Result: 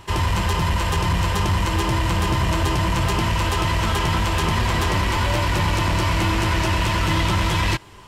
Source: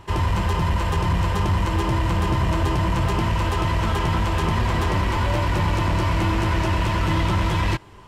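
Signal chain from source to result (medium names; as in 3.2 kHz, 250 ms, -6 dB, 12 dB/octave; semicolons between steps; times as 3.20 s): treble shelf 2.1 kHz +8.5 dB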